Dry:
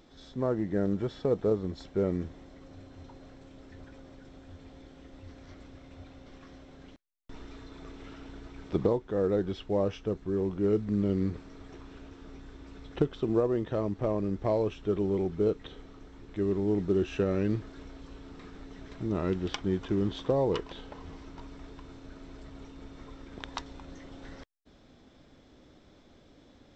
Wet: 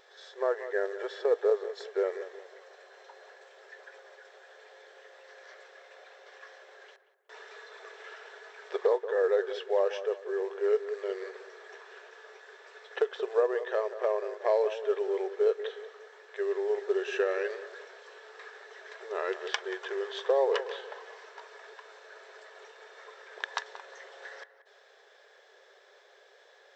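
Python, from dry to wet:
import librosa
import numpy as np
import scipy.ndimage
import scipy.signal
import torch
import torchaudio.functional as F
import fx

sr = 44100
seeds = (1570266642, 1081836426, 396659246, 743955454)

p1 = fx.brickwall_highpass(x, sr, low_hz=380.0)
p2 = fx.peak_eq(p1, sr, hz=1700.0, db=13.5, octaves=0.23)
p3 = p2 + fx.echo_filtered(p2, sr, ms=182, feedback_pct=41, hz=1800.0, wet_db=-12, dry=0)
y = F.gain(torch.from_numpy(p3), 2.5).numpy()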